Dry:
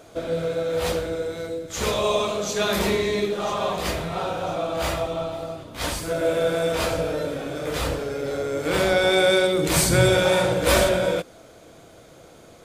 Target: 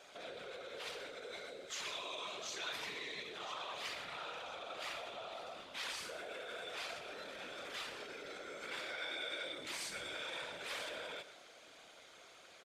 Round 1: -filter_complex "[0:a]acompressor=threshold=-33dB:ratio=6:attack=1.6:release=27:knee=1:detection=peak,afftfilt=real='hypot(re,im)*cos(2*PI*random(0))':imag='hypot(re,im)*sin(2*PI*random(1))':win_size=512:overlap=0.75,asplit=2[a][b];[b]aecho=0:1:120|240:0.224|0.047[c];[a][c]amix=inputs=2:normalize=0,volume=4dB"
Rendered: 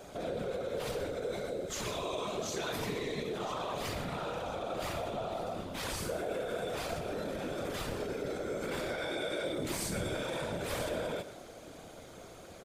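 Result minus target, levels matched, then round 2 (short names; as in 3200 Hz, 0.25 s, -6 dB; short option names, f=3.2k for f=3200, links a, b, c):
2000 Hz band -5.0 dB
-filter_complex "[0:a]acompressor=threshold=-33dB:ratio=6:attack=1.6:release=27:knee=1:detection=peak,bandpass=f=2.8k:t=q:w=0.83:csg=0,afftfilt=real='hypot(re,im)*cos(2*PI*random(0))':imag='hypot(re,im)*sin(2*PI*random(1))':win_size=512:overlap=0.75,asplit=2[a][b];[b]aecho=0:1:120|240:0.224|0.047[c];[a][c]amix=inputs=2:normalize=0,volume=4dB"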